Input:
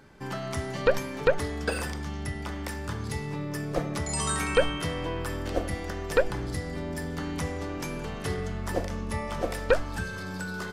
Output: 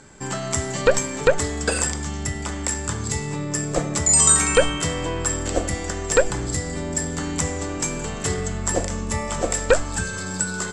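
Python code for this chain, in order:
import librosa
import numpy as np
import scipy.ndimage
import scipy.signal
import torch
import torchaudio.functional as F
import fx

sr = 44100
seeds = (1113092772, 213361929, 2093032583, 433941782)

y = fx.lowpass_res(x, sr, hz=7600.0, q=15.0)
y = y * librosa.db_to_amplitude(5.5)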